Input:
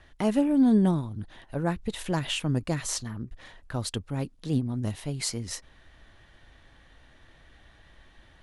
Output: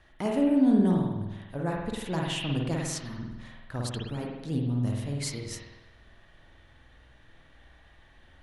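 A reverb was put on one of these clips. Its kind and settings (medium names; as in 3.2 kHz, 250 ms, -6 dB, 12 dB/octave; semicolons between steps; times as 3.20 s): spring tank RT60 1 s, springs 49 ms, chirp 50 ms, DRR -1 dB; trim -4.5 dB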